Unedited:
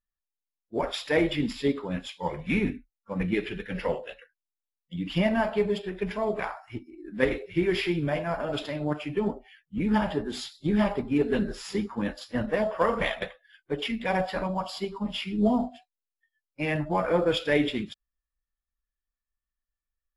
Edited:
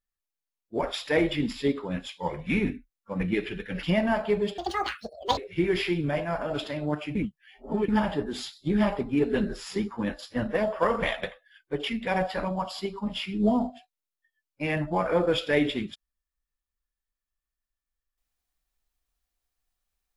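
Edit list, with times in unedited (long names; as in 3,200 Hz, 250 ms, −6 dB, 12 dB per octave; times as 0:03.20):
0:03.83–0:05.11: remove
0:05.86–0:07.36: play speed 189%
0:09.14–0:09.87: reverse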